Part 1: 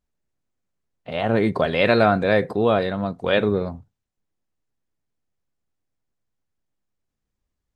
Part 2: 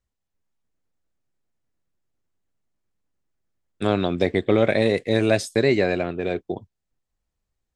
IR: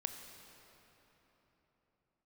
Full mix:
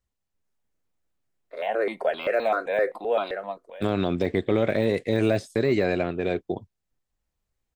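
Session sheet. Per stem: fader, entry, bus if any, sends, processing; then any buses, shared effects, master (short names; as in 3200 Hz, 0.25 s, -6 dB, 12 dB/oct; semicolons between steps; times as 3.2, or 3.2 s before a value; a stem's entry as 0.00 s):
-1.5 dB, 0.45 s, no send, de-esser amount 85%; HPF 320 Hz 24 dB/oct; step phaser 7.7 Hz 790–1800 Hz; auto duck -18 dB, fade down 0.30 s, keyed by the second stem
-0.5 dB, 0.00 s, no send, de-esser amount 95%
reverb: off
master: limiter -12.5 dBFS, peak gain reduction 4.5 dB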